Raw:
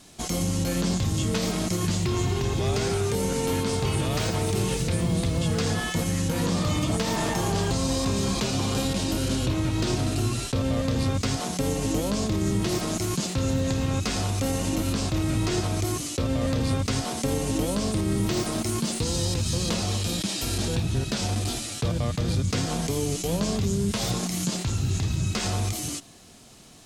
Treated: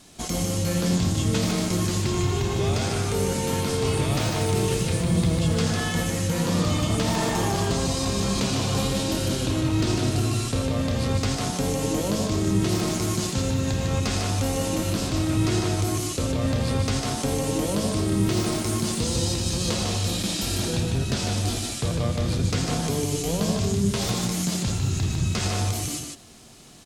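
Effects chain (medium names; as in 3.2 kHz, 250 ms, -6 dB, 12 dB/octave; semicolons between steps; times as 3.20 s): loudspeakers at several distances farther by 29 m -11 dB, 52 m -4 dB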